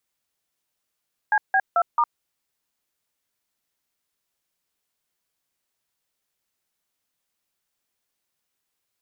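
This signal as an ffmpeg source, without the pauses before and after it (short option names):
-f lavfi -i "aevalsrc='0.119*clip(min(mod(t,0.22),0.059-mod(t,0.22))/0.002,0,1)*(eq(floor(t/0.22),0)*(sin(2*PI*852*mod(t,0.22))+sin(2*PI*1633*mod(t,0.22)))+eq(floor(t/0.22),1)*(sin(2*PI*770*mod(t,0.22))+sin(2*PI*1633*mod(t,0.22)))+eq(floor(t/0.22),2)*(sin(2*PI*697*mod(t,0.22))+sin(2*PI*1336*mod(t,0.22)))+eq(floor(t/0.22),3)*(sin(2*PI*941*mod(t,0.22))+sin(2*PI*1209*mod(t,0.22))))':d=0.88:s=44100"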